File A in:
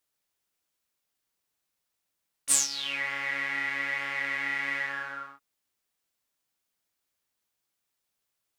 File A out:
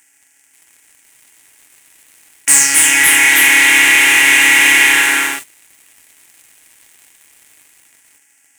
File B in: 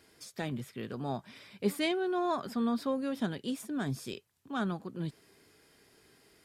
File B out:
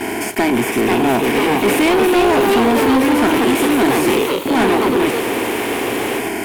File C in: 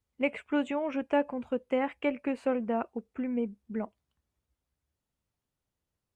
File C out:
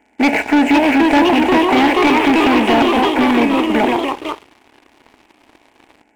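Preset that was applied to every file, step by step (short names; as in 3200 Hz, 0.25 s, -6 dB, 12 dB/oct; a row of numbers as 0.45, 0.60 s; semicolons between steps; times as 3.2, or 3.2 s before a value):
per-bin compression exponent 0.4; gate -42 dBFS, range -8 dB; fixed phaser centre 800 Hz, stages 8; echoes that change speed 0.534 s, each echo +2 st, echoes 3; sample leveller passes 3; gain +7.5 dB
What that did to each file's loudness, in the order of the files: +21.0, +19.5, +19.0 LU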